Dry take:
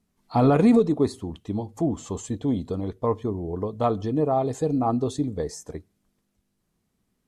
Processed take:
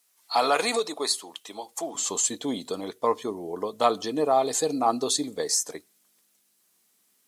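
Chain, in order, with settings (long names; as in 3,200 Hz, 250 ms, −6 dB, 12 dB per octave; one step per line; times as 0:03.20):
dynamic equaliser 4,400 Hz, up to +5 dB, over −57 dBFS, Q 3.4
high-pass filter 580 Hz 12 dB per octave, from 0:01.95 220 Hz
spectral tilt +4 dB per octave
level +4 dB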